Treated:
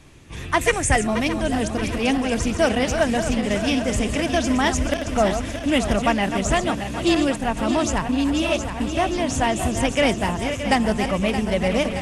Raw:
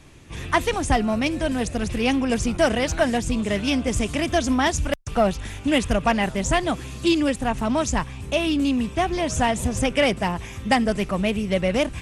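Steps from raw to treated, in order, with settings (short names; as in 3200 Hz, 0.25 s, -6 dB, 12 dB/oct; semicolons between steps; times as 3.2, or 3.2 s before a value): regenerating reverse delay 0.311 s, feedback 76%, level -8.5 dB; 0.61–1.07 graphic EQ 125/250/500/1000/2000/4000/8000 Hz +6/-6/+5/-5/+9/-6/+11 dB; 8.09–8.8 reverse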